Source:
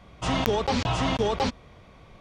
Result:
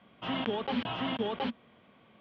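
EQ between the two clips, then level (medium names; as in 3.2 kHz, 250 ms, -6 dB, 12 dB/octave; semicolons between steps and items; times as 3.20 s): distance through air 62 m; cabinet simulation 180–3400 Hz, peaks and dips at 230 Hz +9 dB, 1.6 kHz +4 dB, 3.1 kHz +9 dB; -8.5 dB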